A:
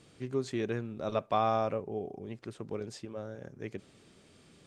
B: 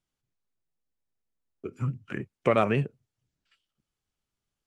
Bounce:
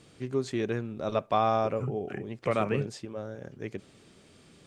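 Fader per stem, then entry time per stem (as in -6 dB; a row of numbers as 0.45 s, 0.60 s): +3.0 dB, -5.0 dB; 0.00 s, 0.00 s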